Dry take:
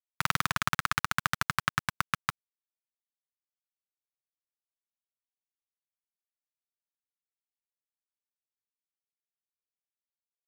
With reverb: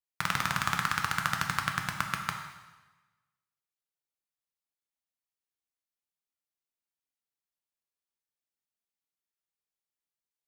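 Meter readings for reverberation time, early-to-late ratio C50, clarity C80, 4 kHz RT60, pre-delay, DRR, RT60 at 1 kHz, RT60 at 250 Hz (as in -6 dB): 1.2 s, 5.5 dB, 7.5 dB, 1.1 s, 6 ms, 3.0 dB, 1.2 s, 1.1 s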